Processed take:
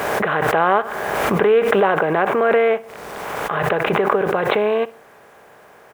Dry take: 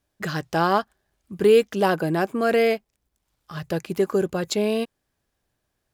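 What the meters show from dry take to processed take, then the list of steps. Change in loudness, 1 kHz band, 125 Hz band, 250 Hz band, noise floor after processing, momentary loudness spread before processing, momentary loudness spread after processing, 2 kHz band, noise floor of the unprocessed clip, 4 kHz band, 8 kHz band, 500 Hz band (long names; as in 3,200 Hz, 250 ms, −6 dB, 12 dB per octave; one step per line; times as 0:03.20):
+4.5 dB, +8.0 dB, +2.0 dB, +0.5 dB, −47 dBFS, 12 LU, 10 LU, +9.0 dB, −78 dBFS, +2.0 dB, can't be measured, +4.5 dB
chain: compressor on every frequency bin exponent 0.6
high-pass filter 56 Hz 12 dB per octave
flat-topped bell 1,000 Hz +9.5 dB 2.6 octaves
in parallel at +1 dB: downward compressor 10 to 1, threshold −18 dBFS, peak gain reduction 15 dB
on the sum: downsampling to 8,000 Hz
on a send: repeating echo 62 ms, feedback 35%, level −20 dB
on the sum: bit reduction 8 bits
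background raised ahead of every attack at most 25 dB per second
level −9 dB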